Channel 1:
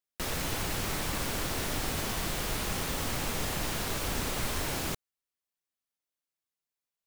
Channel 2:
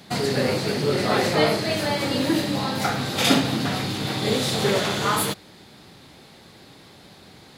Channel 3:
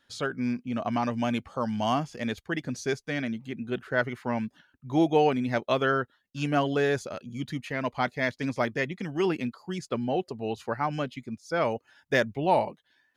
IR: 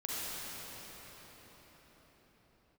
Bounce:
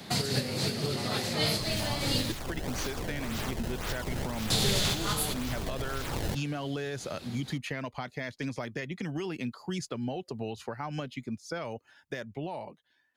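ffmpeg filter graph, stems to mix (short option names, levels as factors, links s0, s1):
-filter_complex "[0:a]acrusher=samples=22:mix=1:aa=0.000001:lfo=1:lforange=35.2:lforate=1.9,adelay=1400,volume=0.447[s0];[1:a]volume=1.26,asplit=3[s1][s2][s3];[s1]atrim=end=2.32,asetpts=PTS-STARTPTS,afade=t=out:st=2.316:d=0.004:c=hsin[s4];[s2]atrim=start=2.32:end=4.5,asetpts=PTS-STARTPTS,volume=0[s5];[s3]atrim=start=4.5,asetpts=PTS-STARTPTS,afade=t=in:d=0.004:c=hsin[s6];[s4][s5][s6]concat=n=3:v=0:a=1[s7];[2:a]alimiter=limit=0.0841:level=0:latency=1:release=188,volume=0.562,asplit=2[s8][s9];[s9]apad=whole_len=334072[s10];[s7][s10]sidechaincompress=threshold=0.01:ratio=8:attack=29:release=122[s11];[s0][s8]amix=inputs=2:normalize=0,dynaudnorm=f=410:g=13:m=3.98,alimiter=limit=0.0944:level=0:latency=1:release=339,volume=1[s12];[s11][s12]amix=inputs=2:normalize=0,acrossover=split=140|3000[s13][s14][s15];[s14]acompressor=threshold=0.02:ratio=4[s16];[s13][s16][s15]amix=inputs=3:normalize=0"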